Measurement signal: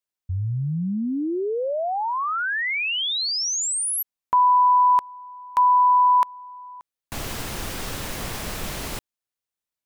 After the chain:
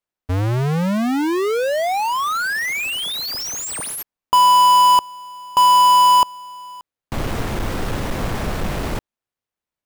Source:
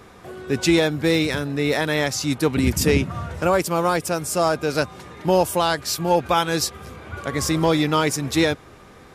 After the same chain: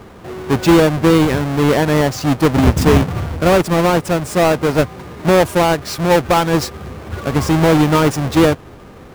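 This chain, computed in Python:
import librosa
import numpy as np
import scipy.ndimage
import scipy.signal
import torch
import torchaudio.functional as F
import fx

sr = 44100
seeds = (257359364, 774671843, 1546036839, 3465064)

y = fx.halfwave_hold(x, sr)
y = fx.high_shelf(y, sr, hz=2600.0, db=-9.5)
y = y * librosa.db_to_amplitude(3.5)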